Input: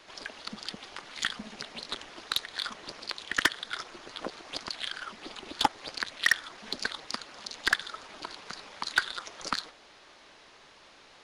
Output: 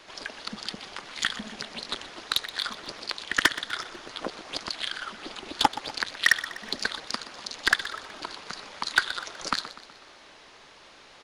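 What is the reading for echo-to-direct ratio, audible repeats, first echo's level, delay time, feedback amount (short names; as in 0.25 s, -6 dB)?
-13.5 dB, 4, -15.0 dB, 0.124 s, 51%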